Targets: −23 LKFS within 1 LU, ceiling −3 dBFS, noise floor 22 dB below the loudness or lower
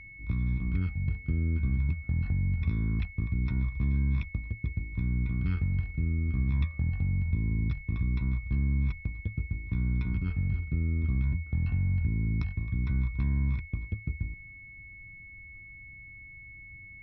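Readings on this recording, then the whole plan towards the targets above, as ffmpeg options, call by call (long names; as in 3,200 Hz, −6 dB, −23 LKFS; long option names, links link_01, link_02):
interfering tone 2,200 Hz; level of the tone −46 dBFS; integrated loudness −31.0 LKFS; sample peak −17.5 dBFS; target loudness −23.0 LKFS
→ -af "bandreject=frequency=2200:width=30"
-af "volume=8dB"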